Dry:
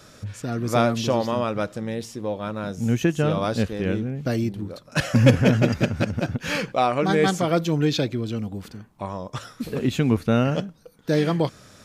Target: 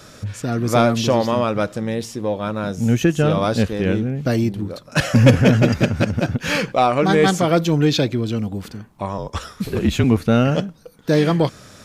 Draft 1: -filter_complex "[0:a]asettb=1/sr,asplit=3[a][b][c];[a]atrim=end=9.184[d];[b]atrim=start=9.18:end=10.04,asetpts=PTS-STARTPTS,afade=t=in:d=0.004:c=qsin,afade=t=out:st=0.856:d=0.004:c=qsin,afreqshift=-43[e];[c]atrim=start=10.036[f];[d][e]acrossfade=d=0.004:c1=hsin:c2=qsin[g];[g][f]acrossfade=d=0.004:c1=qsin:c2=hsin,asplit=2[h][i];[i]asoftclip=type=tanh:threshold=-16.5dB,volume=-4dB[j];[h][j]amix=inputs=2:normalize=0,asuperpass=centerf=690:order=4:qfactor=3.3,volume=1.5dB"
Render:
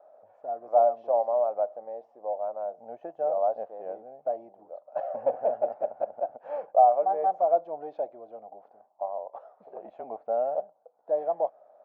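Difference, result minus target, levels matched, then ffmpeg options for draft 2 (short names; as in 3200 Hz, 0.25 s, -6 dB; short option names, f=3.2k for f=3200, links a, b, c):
500 Hz band +3.0 dB
-filter_complex "[0:a]asettb=1/sr,asplit=3[a][b][c];[a]atrim=end=9.184[d];[b]atrim=start=9.18:end=10.04,asetpts=PTS-STARTPTS,afade=t=in:d=0.004:c=qsin,afade=t=out:st=0.856:d=0.004:c=qsin,afreqshift=-43[e];[c]atrim=start=10.036[f];[d][e]acrossfade=d=0.004:c1=hsin:c2=qsin[g];[g][f]acrossfade=d=0.004:c1=qsin:c2=hsin,asplit=2[h][i];[i]asoftclip=type=tanh:threshold=-16.5dB,volume=-4dB[j];[h][j]amix=inputs=2:normalize=0,volume=1.5dB"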